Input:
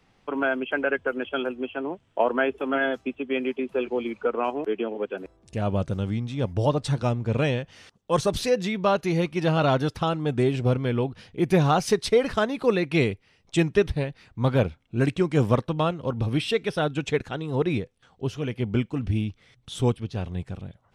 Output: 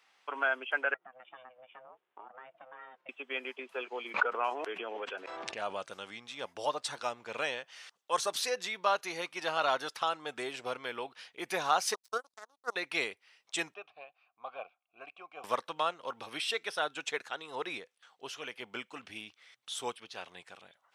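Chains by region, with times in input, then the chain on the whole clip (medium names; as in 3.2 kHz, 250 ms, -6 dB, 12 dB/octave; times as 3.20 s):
0.94–3.09 s: compression, threshold -34 dBFS + ring modulator 260 Hz + tape spacing loss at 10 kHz 42 dB
4.14–5.84 s: level-controlled noise filter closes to 2 kHz, open at -22 dBFS + swell ahead of each attack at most 21 dB/s
11.94–12.76 s: Chebyshev band-stop 560–5700 Hz + power-law waveshaper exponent 3
13.74–15.44 s: vowel filter a + tone controls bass +9 dB, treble -6 dB
whole clip: high-pass 1 kHz 12 dB/octave; dynamic bell 2.6 kHz, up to -4 dB, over -42 dBFS, Q 1.1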